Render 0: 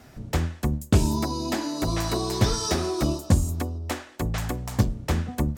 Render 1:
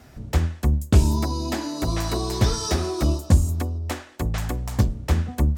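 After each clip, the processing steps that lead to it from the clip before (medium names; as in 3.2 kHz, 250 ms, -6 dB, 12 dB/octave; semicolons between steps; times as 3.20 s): peaking EQ 68 Hz +10 dB 0.49 oct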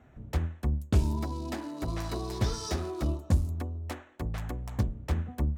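local Wiener filter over 9 samples; trim -8.5 dB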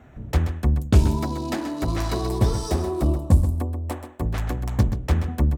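delay 130 ms -10 dB; time-frequency box 2.28–4.22 s, 1.2–7.5 kHz -7 dB; trim +8.5 dB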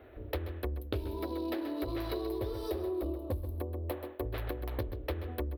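FFT filter 110 Hz 0 dB, 150 Hz -26 dB, 330 Hz +10 dB, 540 Hz +11 dB, 770 Hz +1 dB, 4.1 kHz +6 dB, 7.1 kHz -22 dB, 12 kHz +10 dB; compression 6:1, threshold -25 dBFS, peak gain reduction 15.5 dB; trim -7.5 dB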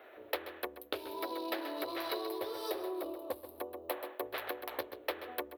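high-pass 630 Hz 12 dB/octave; trim +5 dB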